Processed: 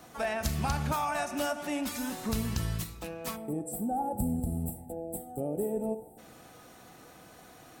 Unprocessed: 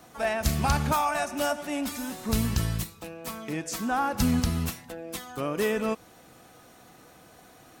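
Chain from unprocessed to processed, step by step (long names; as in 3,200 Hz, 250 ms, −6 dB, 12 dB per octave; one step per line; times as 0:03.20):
gain on a spectral selection 0:03.36–0:06.18, 890–7,500 Hz −28 dB
downward compressor 2.5 to 1, threshold −30 dBFS, peak gain reduction 8 dB
on a send: convolution reverb RT60 0.85 s, pre-delay 35 ms, DRR 13 dB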